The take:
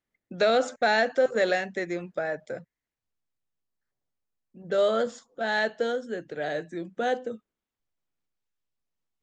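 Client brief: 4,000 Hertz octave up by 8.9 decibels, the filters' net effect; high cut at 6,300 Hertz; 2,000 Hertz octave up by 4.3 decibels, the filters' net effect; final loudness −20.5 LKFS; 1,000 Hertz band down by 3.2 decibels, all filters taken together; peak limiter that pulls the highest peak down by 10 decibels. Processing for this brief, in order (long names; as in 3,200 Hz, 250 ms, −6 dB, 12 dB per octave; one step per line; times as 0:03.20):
low-pass filter 6,300 Hz
parametric band 1,000 Hz −7.5 dB
parametric band 2,000 Hz +6.5 dB
parametric band 4,000 Hz +9 dB
level +9 dB
brickwall limiter −9.5 dBFS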